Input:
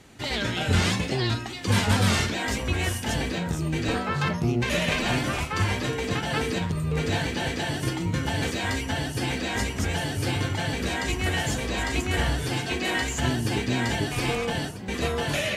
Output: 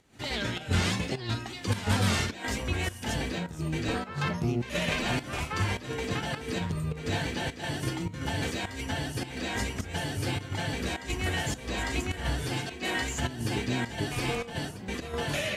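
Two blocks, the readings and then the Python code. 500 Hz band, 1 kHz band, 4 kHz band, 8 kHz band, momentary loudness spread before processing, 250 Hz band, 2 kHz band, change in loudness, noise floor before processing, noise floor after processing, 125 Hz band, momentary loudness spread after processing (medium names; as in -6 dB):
-5.0 dB, -5.0 dB, -5.0 dB, -5.0 dB, 4 LU, -5.0 dB, -5.0 dB, -5.0 dB, -33 dBFS, -43 dBFS, -5.0 dB, 5 LU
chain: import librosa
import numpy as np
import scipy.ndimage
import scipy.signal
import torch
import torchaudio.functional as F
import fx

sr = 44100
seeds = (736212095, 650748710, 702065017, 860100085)

y = fx.volume_shaper(x, sr, bpm=104, per_beat=1, depth_db=-12, release_ms=133.0, shape='slow start')
y = y * 10.0 ** (-4.0 / 20.0)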